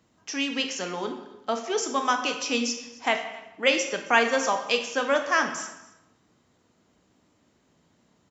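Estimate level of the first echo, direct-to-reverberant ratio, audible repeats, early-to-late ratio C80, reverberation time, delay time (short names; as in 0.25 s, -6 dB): -21.5 dB, 5.5 dB, 1, 10.0 dB, 0.90 s, 0.269 s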